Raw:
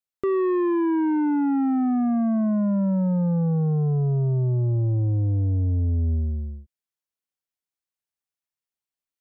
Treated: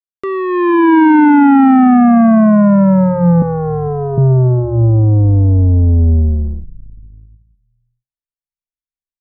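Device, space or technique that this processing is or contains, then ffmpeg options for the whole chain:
voice memo with heavy noise removal: -filter_complex "[0:a]bandreject=f=60:t=h:w=6,bandreject=f=120:t=h:w=6,bandreject=f=180:t=h:w=6,asettb=1/sr,asplit=3[a][b][c];[a]atrim=end=3.424[d];[b]atrim=start=3.42:end=4.18,asetpts=PTS-STARTPTS,afade=t=in:d=0.004:c=qsin,afade=t=out:st=0.756:d=0.004:c=qsin,highpass=290[e];[c]atrim=start=4.176[f];[d][e]acrossfade=d=0.004:c1=hsin:c2=qsin[g];[g][f]acrossfade=d=0.004:c1=qsin:c2=hsin,asplit=4[h][i][j][k];[i]adelay=454,afreqshift=-64,volume=-19dB[l];[j]adelay=908,afreqshift=-128,volume=-26.5dB[m];[k]adelay=1362,afreqshift=-192,volume=-34.1dB[n];[h][l][m][n]amix=inputs=4:normalize=0,anlmdn=0.158,dynaudnorm=f=480:g=3:m=15.5dB,tiltshelf=f=870:g=-6.5,volume=5dB"

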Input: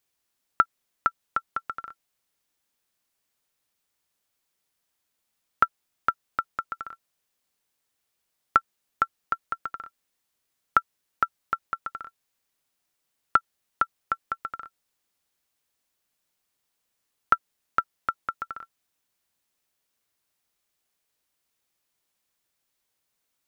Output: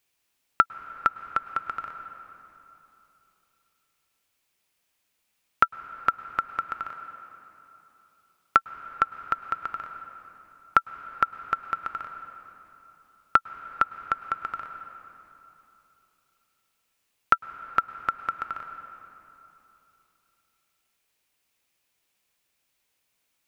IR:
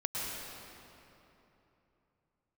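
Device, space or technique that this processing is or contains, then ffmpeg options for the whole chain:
ducked reverb: -filter_complex "[0:a]asplit=3[a][b][c];[1:a]atrim=start_sample=2205[d];[b][d]afir=irnorm=-1:irlink=0[e];[c]apad=whole_len=1035308[f];[e][f]sidechaincompress=threshold=-27dB:ratio=8:attack=26:release=821,volume=-10dB[g];[a][g]amix=inputs=2:normalize=0,asettb=1/sr,asplit=3[h][i][j];[h]atrim=end=6.894[k];[i]atrim=start=6.89:end=8.57,asetpts=PTS-STARTPTS,afade=t=in:d=0.004:c=qsin,afade=t=out:st=1.676:d=0.004:c=qsin,highpass=f=98:p=1[l];[j]atrim=start=8.566[m];[k][l]acrossfade=d=0.004:c1=hsin:c2=qsin[n];[n][m]acrossfade=d=0.004:c1=qsin:c2=hsin,equalizer=f=2.5k:t=o:w=0.61:g=5.5"

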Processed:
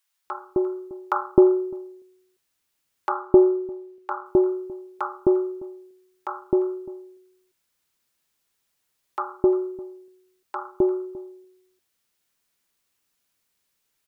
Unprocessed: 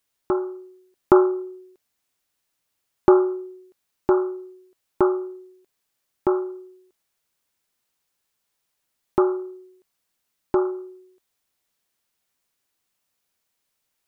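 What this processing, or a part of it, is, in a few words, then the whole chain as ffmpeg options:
ducked delay: -filter_complex "[0:a]asettb=1/sr,asplit=3[a][b][c];[a]atrim=end=3.094[d];[b]atrim=start=3.09:end=4.26,asetpts=PTS-STARTPTS,afade=t=in:d=0.004:c=qsin,afade=t=out:st=1.166:d=0.004:c=qsin,bass=f=250:g=1,treble=f=4k:g=-7[e];[c]atrim=start=4.256[f];[d][e]acrossfade=d=0.004:c1=hsin:c2=qsin[g];[g][f]acrossfade=d=0.004:c1=qsin:c2=hsin,asplit=3[h][i][j];[i]adelay=348,volume=-5dB[k];[j]apad=whole_len=636204[l];[k][l]sidechaincompress=threshold=-32dB:ratio=8:attack=16:release=1470[m];[h][m]amix=inputs=2:normalize=0,acrossover=split=720[n][o];[n]adelay=260[p];[p][o]amix=inputs=2:normalize=0,volume=1dB"

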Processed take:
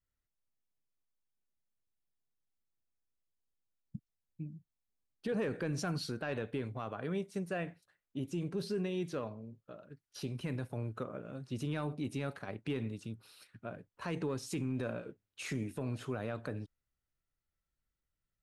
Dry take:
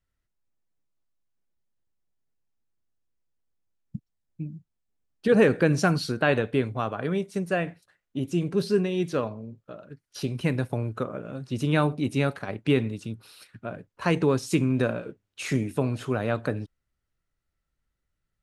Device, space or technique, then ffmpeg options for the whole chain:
soft clipper into limiter: -af "asoftclip=type=tanh:threshold=-10.5dB,alimiter=limit=-19.5dB:level=0:latency=1:release=51,volume=-8.5dB"

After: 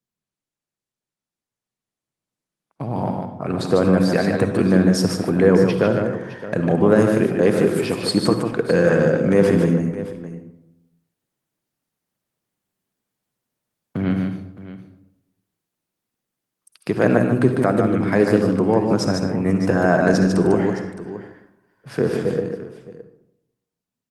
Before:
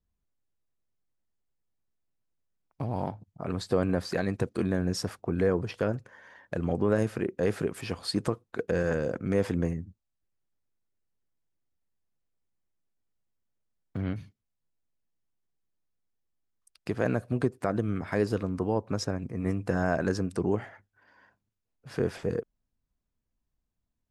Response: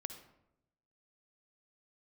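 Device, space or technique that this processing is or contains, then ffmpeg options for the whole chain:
far-field microphone of a smart speaker: -filter_complex "[0:a]asplit=3[a][b][c];[a]afade=t=out:st=2.89:d=0.02[d];[b]lowshelf=f=78:g=4,afade=t=in:st=2.89:d=0.02,afade=t=out:st=4.12:d=0.02[e];[c]afade=t=in:st=4.12:d=0.02[f];[d][e][f]amix=inputs=3:normalize=0,aecho=1:1:149|615:0.562|0.188[g];[1:a]atrim=start_sample=2205[h];[g][h]afir=irnorm=-1:irlink=0,highpass=f=120:w=0.5412,highpass=f=120:w=1.3066,dynaudnorm=f=440:g=13:m=12.5dB,volume=2dB" -ar 48000 -c:a libopus -b:a 32k

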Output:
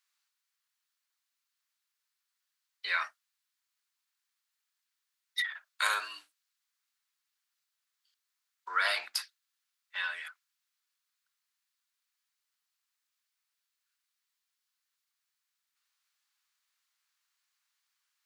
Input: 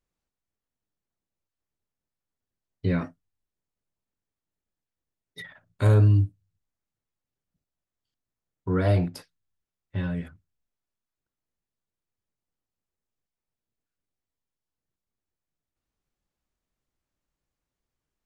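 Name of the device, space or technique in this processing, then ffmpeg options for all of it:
headphones lying on a table: -af "highpass=f=1.2k:w=0.5412,highpass=f=1.2k:w=1.3066,equalizer=f=4.3k:t=o:w=0.57:g=4,volume=9dB"

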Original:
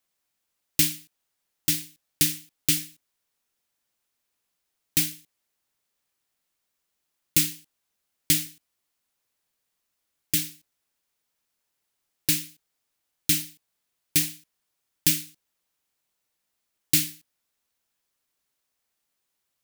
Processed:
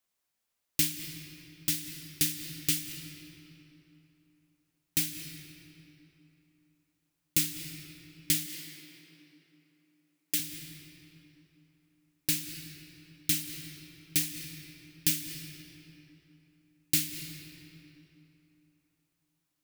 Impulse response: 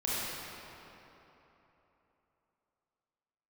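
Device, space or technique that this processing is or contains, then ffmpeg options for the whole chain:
ducked reverb: -filter_complex "[0:a]asplit=3[a][b][c];[1:a]atrim=start_sample=2205[d];[b][d]afir=irnorm=-1:irlink=0[e];[c]apad=whole_len=866098[f];[e][f]sidechaincompress=threshold=-39dB:ratio=8:attack=16:release=112,volume=-10.5dB[g];[a][g]amix=inputs=2:normalize=0,asettb=1/sr,asplit=3[h][i][j];[h]atrim=end=8.464[k];[i]atrim=start=8.46:end=10.4,asetpts=PTS-STARTPTS,afade=t=in:d=0.004:c=qsin,afade=t=out:st=1.936:d=0.004:c=qsin,highpass=250[l];[j]atrim=start=10.396[m];[k][l]acrossfade=d=0.004:c1=hsin:c2=qsin[n];[n][m]acrossfade=d=0.004:c1=qsin:c2=hsin,volume=-6dB"

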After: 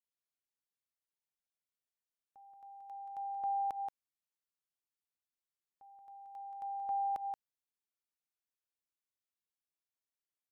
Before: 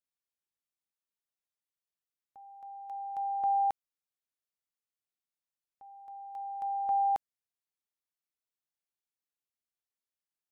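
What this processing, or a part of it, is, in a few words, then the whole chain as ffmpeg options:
ducked delay: -filter_complex "[0:a]asplit=3[a][b][c];[b]adelay=178,volume=-4.5dB[d];[c]apad=whole_len=471692[e];[d][e]sidechaincompress=threshold=-40dB:ratio=8:attack=39:release=101[f];[a][f]amix=inputs=2:normalize=0,volume=-6.5dB"

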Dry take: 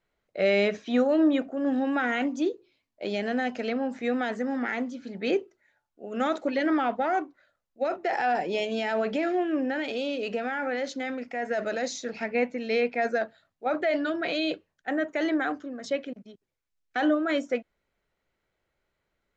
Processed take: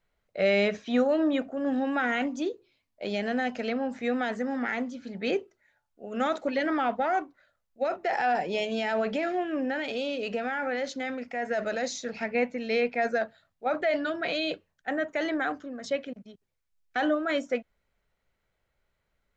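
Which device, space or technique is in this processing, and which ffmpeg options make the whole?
low shelf boost with a cut just above: -af "lowshelf=f=88:g=7,equalizer=f=330:t=o:w=0.57:g=-5.5"

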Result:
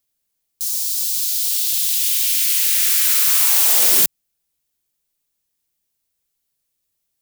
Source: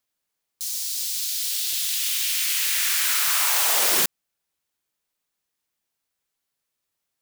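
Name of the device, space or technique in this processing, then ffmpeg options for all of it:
smiley-face EQ: -af "lowshelf=f=89:g=8.5,equalizer=f=1.2k:t=o:w=2.1:g=-6.5,highshelf=f=8.4k:g=6.5,volume=2.5dB"

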